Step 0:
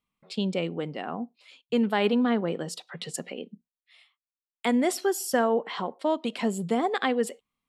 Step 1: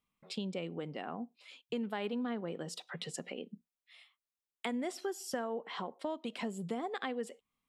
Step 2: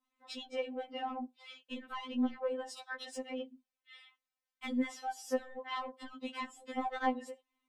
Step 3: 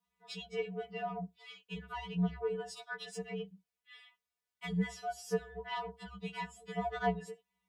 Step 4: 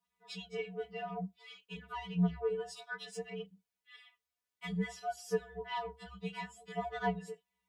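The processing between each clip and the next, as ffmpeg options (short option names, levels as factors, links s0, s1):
-filter_complex "[0:a]acrossover=split=7700[s0][s1];[s1]acompressor=threshold=0.00562:ratio=4:attack=1:release=60[s2];[s0][s2]amix=inputs=2:normalize=0,bandreject=f=4400:w=23,acompressor=threshold=0.0126:ratio=2.5,volume=0.841"
-filter_complex "[0:a]adynamicequalizer=threshold=0.00141:dfrequency=2600:dqfactor=1.2:tfrequency=2600:tqfactor=1.2:attack=5:release=100:ratio=0.375:range=2:mode=cutabove:tftype=bell,asplit=2[s0][s1];[s1]highpass=f=720:p=1,volume=5.62,asoftclip=type=tanh:threshold=0.0841[s2];[s0][s2]amix=inputs=2:normalize=0,lowpass=f=2100:p=1,volume=0.501,afftfilt=real='re*3.46*eq(mod(b,12),0)':imag='im*3.46*eq(mod(b,12),0)':win_size=2048:overlap=0.75"
-af "afreqshift=-69"
-af "flanger=delay=7.1:depth=6.7:regen=38:speed=0.59:shape=triangular,volume=1.41"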